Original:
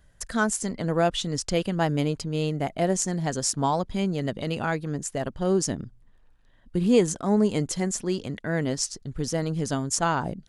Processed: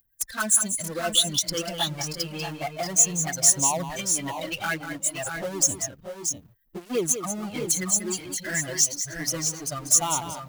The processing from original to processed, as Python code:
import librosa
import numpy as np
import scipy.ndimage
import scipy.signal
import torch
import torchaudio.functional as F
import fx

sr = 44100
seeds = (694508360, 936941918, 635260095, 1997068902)

p1 = fx.bin_expand(x, sr, power=2.0)
p2 = fx.high_shelf(p1, sr, hz=3400.0, db=-7.5)
p3 = fx.over_compress(p2, sr, threshold_db=-31.0, ratio=-0.5)
p4 = p2 + (p3 * 10.0 ** (0.0 / 20.0))
p5 = fx.power_curve(p4, sr, exponent=0.7)
p6 = fx.riaa(p5, sr, side='recording')
p7 = fx.env_flanger(p6, sr, rest_ms=9.0, full_db=-17.0)
p8 = p7 + fx.echo_multitap(p7, sr, ms=(192, 630, 654), db=(-9.5, -9.5, -9.5), dry=0)
y = p8 * 10.0 ** (-1.5 / 20.0)